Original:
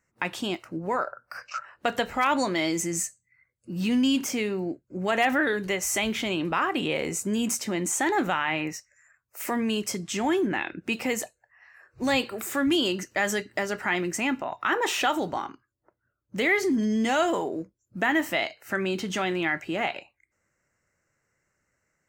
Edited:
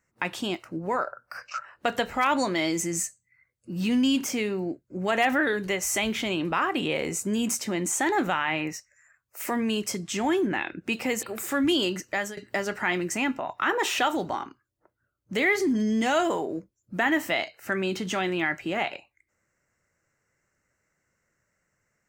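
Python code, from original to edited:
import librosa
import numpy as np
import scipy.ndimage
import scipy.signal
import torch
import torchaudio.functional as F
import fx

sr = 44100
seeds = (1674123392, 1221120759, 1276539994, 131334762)

y = fx.edit(x, sr, fx.cut(start_s=11.23, length_s=1.03),
    fx.fade_out_to(start_s=13.01, length_s=0.39, curve='qsin', floor_db=-19.0), tone=tone)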